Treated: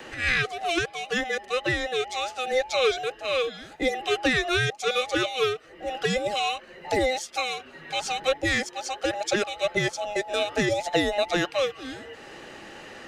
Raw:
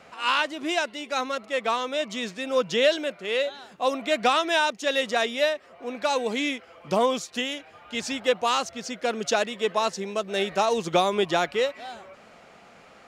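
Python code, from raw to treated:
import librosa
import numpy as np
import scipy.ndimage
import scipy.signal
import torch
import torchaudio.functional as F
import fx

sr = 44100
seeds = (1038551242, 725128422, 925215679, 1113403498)

y = fx.band_invert(x, sr, width_hz=1000)
y = fx.low_shelf(y, sr, hz=340.0, db=-3.0)
y = fx.band_squash(y, sr, depth_pct=40)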